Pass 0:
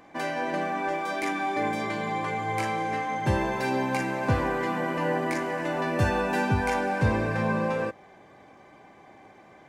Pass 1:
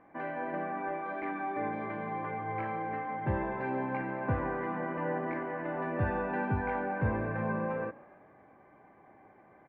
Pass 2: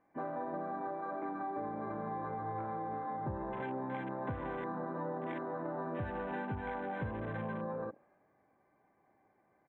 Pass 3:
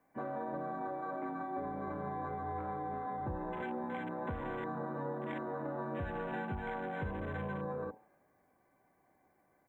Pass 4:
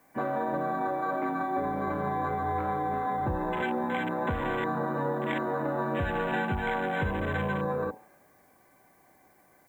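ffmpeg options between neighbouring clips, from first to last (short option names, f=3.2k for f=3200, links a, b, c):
-filter_complex "[0:a]lowpass=f=2k:w=0.5412,lowpass=f=2k:w=1.3066,asplit=5[a][b][c][d][e];[b]adelay=140,afreqshift=32,volume=-22dB[f];[c]adelay=280,afreqshift=64,volume=-27dB[g];[d]adelay=420,afreqshift=96,volume=-32.1dB[h];[e]adelay=560,afreqshift=128,volume=-37.1dB[i];[a][f][g][h][i]amix=inputs=5:normalize=0,volume=-6.5dB"
-af "afwtdn=0.0126,acompressor=threshold=-39dB:ratio=6,volume=3dB"
-af "crystalizer=i=1.5:c=0,afreqshift=-22,bandreject=f=108:t=h:w=4,bandreject=f=216:t=h:w=4,bandreject=f=324:t=h:w=4,bandreject=f=432:t=h:w=4,bandreject=f=540:t=h:w=4,bandreject=f=648:t=h:w=4,bandreject=f=756:t=h:w=4,bandreject=f=864:t=h:w=4,bandreject=f=972:t=h:w=4,bandreject=f=1.08k:t=h:w=4"
-af "highshelf=f=2.3k:g=10,volume=8.5dB"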